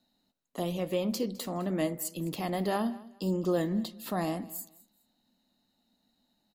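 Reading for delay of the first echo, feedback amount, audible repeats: 209 ms, 24%, 2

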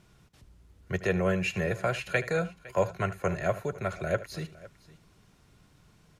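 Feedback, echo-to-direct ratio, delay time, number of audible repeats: repeats not evenly spaced, −15.0 dB, 76 ms, 2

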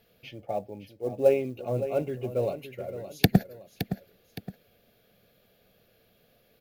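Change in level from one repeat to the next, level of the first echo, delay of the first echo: −8.0 dB, −11.5 dB, 566 ms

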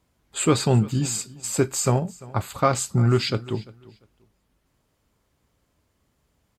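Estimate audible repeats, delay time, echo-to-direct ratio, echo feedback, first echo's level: 2, 345 ms, −21.0 dB, 23%, −21.0 dB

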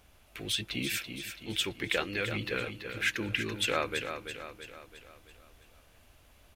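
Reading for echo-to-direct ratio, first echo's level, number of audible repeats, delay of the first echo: −6.5 dB, −8.0 dB, 5, 333 ms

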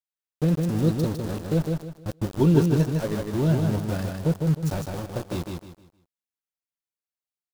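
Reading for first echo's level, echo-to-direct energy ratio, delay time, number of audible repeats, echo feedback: −4.0 dB, −3.5 dB, 155 ms, 3, 30%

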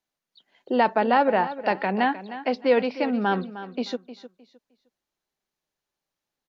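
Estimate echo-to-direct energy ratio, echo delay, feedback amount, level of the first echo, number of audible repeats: −13.5 dB, 308 ms, 24%, −13.5 dB, 2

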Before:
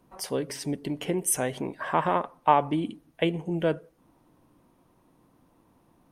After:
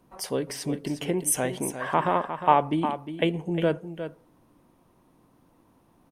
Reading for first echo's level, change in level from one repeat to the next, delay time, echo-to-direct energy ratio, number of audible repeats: −10.0 dB, repeats not evenly spaced, 356 ms, −10.0 dB, 1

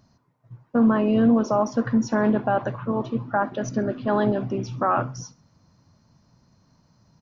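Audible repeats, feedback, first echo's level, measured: 2, 33%, −21.5 dB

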